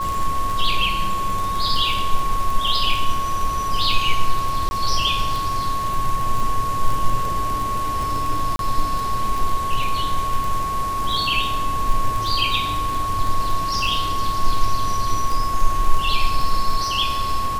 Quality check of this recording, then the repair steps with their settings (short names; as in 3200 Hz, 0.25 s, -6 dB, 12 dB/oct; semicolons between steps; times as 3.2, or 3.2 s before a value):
crackle 26/s -22 dBFS
tone 1100 Hz -22 dBFS
4.69–4.71 gap 20 ms
8.56–8.59 gap 32 ms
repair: de-click; notch 1100 Hz, Q 30; interpolate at 4.69, 20 ms; interpolate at 8.56, 32 ms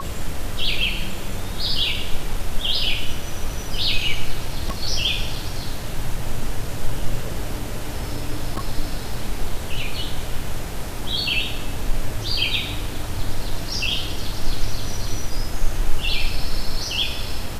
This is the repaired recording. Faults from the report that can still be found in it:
none